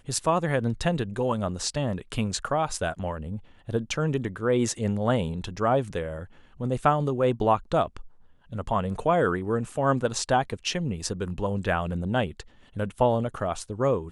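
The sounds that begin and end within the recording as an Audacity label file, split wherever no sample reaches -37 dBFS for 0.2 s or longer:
3.680000	6.250000	sound
6.600000	8.060000	sound
8.520000	12.410000	sound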